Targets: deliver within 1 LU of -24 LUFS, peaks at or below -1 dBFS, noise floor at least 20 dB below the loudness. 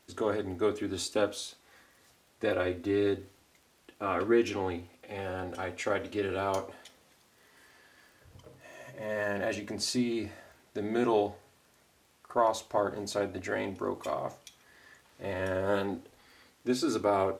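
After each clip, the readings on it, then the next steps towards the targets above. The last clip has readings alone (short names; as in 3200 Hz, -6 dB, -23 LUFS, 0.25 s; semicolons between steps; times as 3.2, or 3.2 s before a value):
ticks 24/s; loudness -32.0 LUFS; peak -13.5 dBFS; loudness target -24.0 LUFS
-> de-click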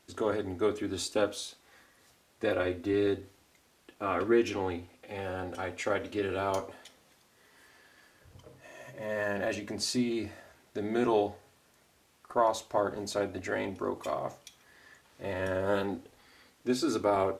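ticks 0/s; loudness -32.0 LUFS; peak -13.5 dBFS; loudness target -24.0 LUFS
-> gain +8 dB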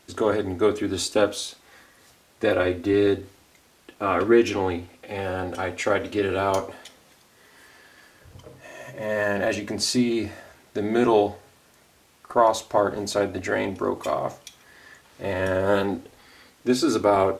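loudness -24.0 LUFS; peak -5.5 dBFS; noise floor -58 dBFS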